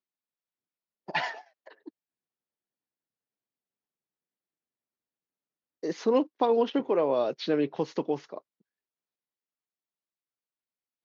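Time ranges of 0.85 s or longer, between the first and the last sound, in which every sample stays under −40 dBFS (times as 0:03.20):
0:01.89–0:05.83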